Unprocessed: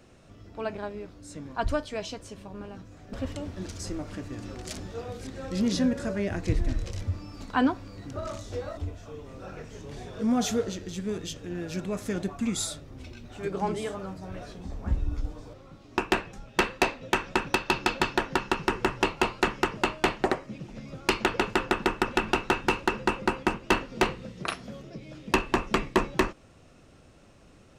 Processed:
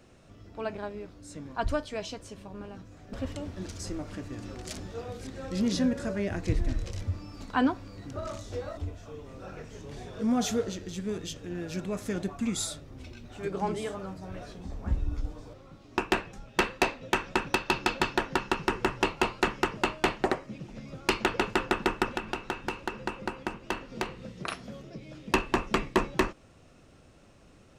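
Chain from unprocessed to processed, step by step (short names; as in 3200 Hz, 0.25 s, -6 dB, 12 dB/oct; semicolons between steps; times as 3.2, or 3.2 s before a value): 22.05–24.51 compressor 6:1, threshold -28 dBFS, peak gain reduction 10 dB; gain -1.5 dB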